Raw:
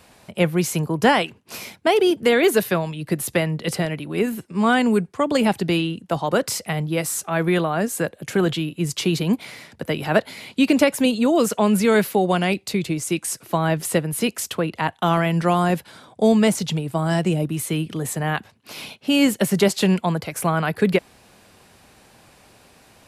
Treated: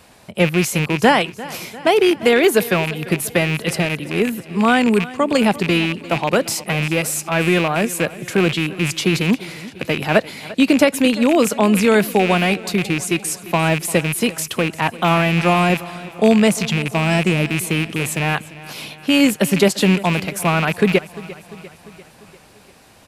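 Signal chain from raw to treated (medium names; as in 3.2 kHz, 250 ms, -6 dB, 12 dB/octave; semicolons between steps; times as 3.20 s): rattle on loud lows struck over -27 dBFS, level -15 dBFS; on a send: feedback delay 347 ms, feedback 58%, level -18 dB; on the sum: trim +3 dB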